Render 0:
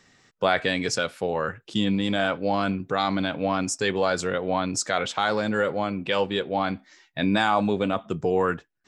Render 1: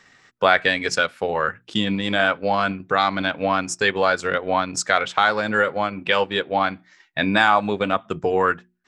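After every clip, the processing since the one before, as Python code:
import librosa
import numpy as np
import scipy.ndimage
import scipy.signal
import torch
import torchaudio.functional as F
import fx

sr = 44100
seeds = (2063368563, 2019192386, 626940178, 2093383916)

y = fx.peak_eq(x, sr, hz=1600.0, db=8.0, octaves=2.2)
y = fx.hum_notches(y, sr, base_hz=60, count=6)
y = fx.transient(y, sr, attack_db=2, sustain_db=-6)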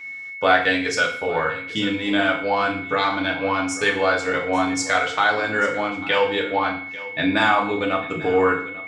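y = x + 10.0 ** (-34.0 / 20.0) * np.sin(2.0 * np.pi * 2200.0 * np.arange(len(x)) / sr)
y = y + 10.0 ** (-17.5 / 20.0) * np.pad(y, (int(844 * sr / 1000.0), 0))[:len(y)]
y = fx.rev_fdn(y, sr, rt60_s=0.52, lf_ratio=1.2, hf_ratio=1.0, size_ms=20.0, drr_db=-1.5)
y = y * librosa.db_to_amplitude(-4.5)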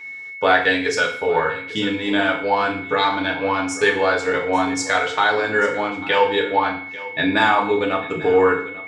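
y = fx.small_body(x, sr, hz=(420.0, 900.0, 1700.0, 3800.0), ring_ms=45, db=8)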